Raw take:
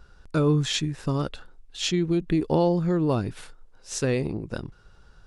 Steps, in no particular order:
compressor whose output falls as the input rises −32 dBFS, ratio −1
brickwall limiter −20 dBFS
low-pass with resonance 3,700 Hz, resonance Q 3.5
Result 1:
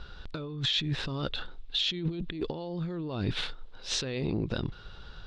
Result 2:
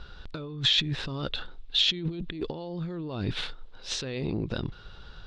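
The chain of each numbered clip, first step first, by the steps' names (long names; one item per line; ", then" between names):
compressor whose output falls as the input rises, then low-pass with resonance, then brickwall limiter
compressor whose output falls as the input rises, then brickwall limiter, then low-pass with resonance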